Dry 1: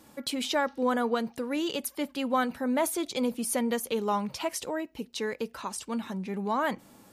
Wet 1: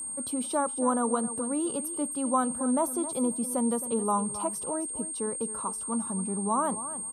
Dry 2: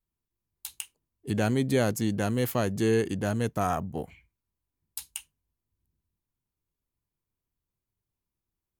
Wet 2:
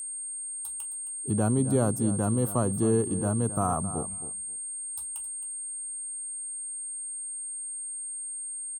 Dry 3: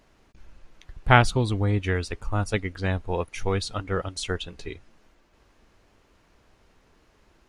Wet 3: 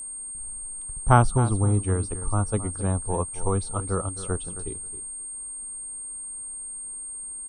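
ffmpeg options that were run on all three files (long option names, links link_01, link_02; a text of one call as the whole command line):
ffmpeg -i in.wav -filter_complex "[0:a]aecho=1:1:267|534:0.211|0.0338,acrossover=split=330[link_01][link_02];[link_01]acontrast=38[link_03];[link_03][link_02]amix=inputs=2:normalize=0,highshelf=frequency=1500:width_type=q:width=3:gain=-8.5,aexciter=amount=1.6:drive=8.2:freq=9400,aeval=exprs='val(0)+0.0316*sin(2*PI*8600*n/s)':channel_layout=same,volume=-3.5dB" out.wav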